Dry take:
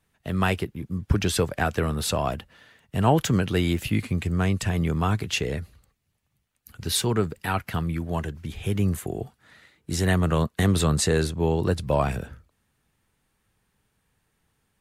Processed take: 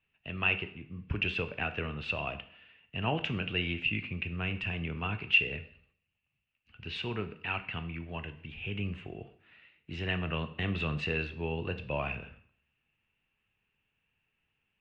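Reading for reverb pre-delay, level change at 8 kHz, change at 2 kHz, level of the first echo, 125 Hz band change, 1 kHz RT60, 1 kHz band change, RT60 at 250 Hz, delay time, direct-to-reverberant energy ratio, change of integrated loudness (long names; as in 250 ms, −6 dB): 6 ms, below −35 dB, 0.0 dB, no echo audible, −12.5 dB, 0.60 s, −11.5 dB, 0.55 s, no echo audible, 9.0 dB, −8.0 dB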